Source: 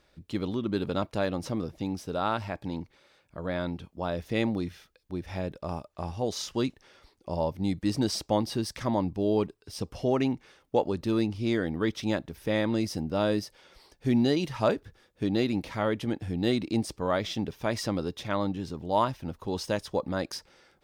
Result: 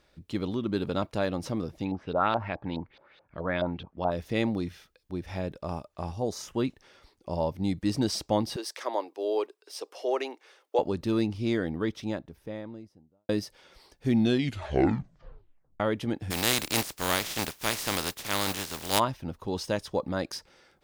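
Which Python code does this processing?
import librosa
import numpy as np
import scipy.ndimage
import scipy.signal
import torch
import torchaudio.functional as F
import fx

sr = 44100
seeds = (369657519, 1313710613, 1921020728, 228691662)

y = fx.filter_lfo_lowpass(x, sr, shape='saw_up', hz=4.7, low_hz=620.0, high_hz=4300.0, q=2.9, at=(1.84, 4.1), fade=0.02)
y = fx.peak_eq(y, sr, hz=fx.line((6.12, 1800.0), (6.67, 6600.0)), db=-14.0, octaves=0.83, at=(6.12, 6.67), fade=0.02)
y = fx.steep_highpass(y, sr, hz=370.0, slope=36, at=(8.56, 10.79))
y = fx.studio_fade_out(y, sr, start_s=11.31, length_s=1.98)
y = fx.spec_flatten(y, sr, power=0.29, at=(16.3, 18.98), fade=0.02)
y = fx.edit(y, sr, fx.tape_stop(start_s=14.1, length_s=1.7), tone=tone)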